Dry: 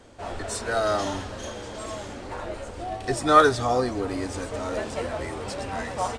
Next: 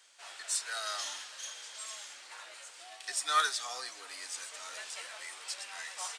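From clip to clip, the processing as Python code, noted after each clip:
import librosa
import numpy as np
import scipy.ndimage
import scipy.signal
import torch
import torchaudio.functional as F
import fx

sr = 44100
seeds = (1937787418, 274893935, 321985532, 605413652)

y = scipy.signal.sosfilt(scipy.signal.butter(2, 1500.0, 'highpass', fs=sr, output='sos'), x)
y = fx.high_shelf(y, sr, hz=2300.0, db=11.0)
y = y * 10.0 ** (-9.0 / 20.0)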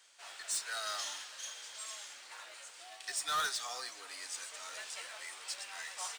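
y = fx.mod_noise(x, sr, seeds[0], snr_db=23)
y = np.clip(y, -10.0 ** (-28.5 / 20.0), 10.0 ** (-28.5 / 20.0))
y = y * 10.0 ** (-1.5 / 20.0)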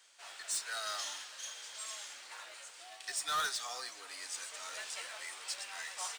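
y = fx.rider(x, sr, range_db=3, speed_s=2.0)
y = y * 10.0 ** (-1.0 / 20.0)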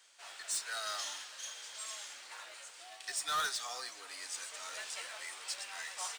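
y = x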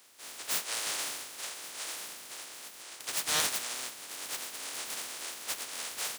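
y = fx.spec_clip(x, sr, under_db=29)
y = fx.highpass(y, sr, hz=140.0, slope=6)
y = y * 10.0 ** (5.0 / 20.0)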